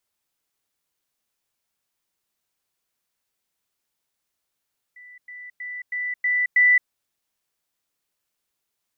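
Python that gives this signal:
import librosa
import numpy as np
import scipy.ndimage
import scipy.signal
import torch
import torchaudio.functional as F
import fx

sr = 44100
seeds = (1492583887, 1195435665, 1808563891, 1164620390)

y = fx.level_ladder(sr, hz=1980.0, from_db=-42.5, step_db=6.0, steps=6, dwell_s=0.22, gap_s=0.1)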